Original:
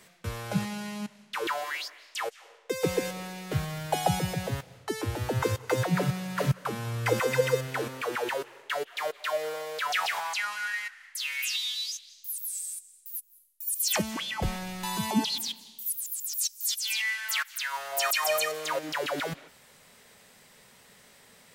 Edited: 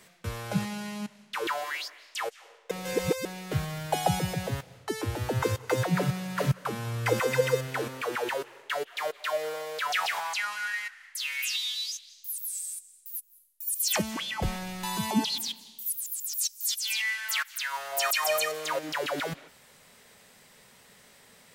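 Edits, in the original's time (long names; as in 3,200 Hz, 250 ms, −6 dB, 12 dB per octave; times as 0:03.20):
0:02.71–0:03.25: reverse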